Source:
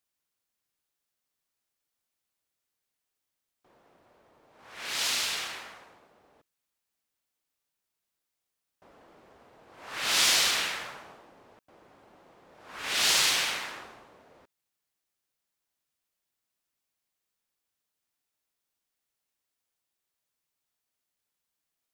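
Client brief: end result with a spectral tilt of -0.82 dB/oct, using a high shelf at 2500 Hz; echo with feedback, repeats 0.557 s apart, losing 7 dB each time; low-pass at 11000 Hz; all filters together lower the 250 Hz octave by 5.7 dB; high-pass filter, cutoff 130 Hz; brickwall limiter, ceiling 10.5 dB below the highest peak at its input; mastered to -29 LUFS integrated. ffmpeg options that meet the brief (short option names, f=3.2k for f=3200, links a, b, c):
-af "highpass=130,lowpass=11k,equalizer=f=250:t=o:g=-7.5,highshelf=f=2.5k:g=-3.5,alimiter=limit=-24dB:level=0:latency=1,aecho=1:1:557|1114|1671|2228|2785:0.447|0.201|0.0905|0.0407|0.0183,volume=5.5dB"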